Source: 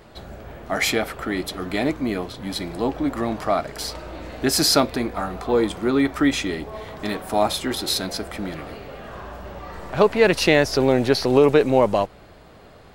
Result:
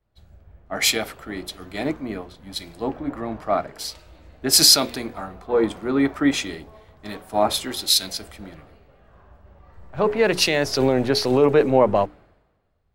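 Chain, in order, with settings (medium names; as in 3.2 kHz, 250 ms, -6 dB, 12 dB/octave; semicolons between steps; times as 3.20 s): hum notches 60/120/180/240/300/360/420 Hz; peak limiter -8.5 dBFS, peak gain reduction 6.5 dB; three bands expanded up and down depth 100%; trim -1.5 dB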